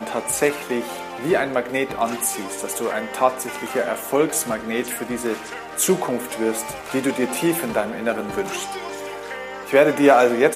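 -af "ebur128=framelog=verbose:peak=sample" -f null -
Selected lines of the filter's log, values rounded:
Integrated loudness:
  I:         -22.0 LUFS
  Threshold: -32.0 LUFS
Loudness range:
  LRA:         2.5 LU
  Threshold: -43.0 LUFS
  LRA low:   -24.0 LUFS
  LRA high:  -21.5 LUFS
Sample peak:
  Peak:       -1.8 dBFS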